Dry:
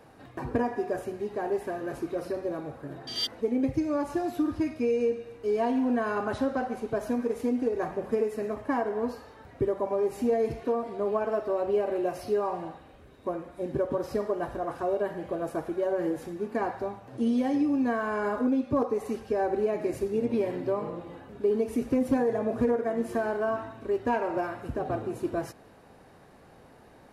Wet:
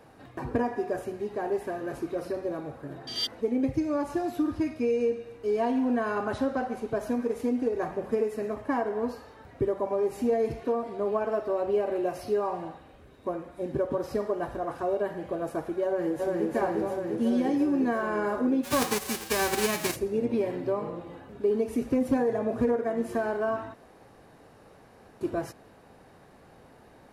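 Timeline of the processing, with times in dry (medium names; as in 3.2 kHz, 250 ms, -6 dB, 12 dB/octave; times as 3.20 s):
15.84–16.53 s: echo throw 350 ms, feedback 80%, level -1 dB
18.63–19.95 s: formants flattened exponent 0.3
23.74–25.21 s: room tone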